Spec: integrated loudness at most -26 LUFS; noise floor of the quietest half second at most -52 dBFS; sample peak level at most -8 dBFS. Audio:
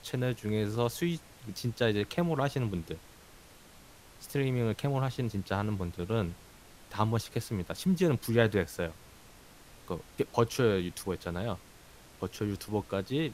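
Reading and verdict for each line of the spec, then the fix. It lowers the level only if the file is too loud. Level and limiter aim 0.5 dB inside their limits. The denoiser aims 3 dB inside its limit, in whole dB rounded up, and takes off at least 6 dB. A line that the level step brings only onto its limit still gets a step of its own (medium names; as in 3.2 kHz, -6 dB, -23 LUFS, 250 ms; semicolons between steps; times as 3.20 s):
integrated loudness -32.0 LUFS: pass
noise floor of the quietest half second -55 dBFS: pass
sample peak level -11.0 dBFS: pass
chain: none needed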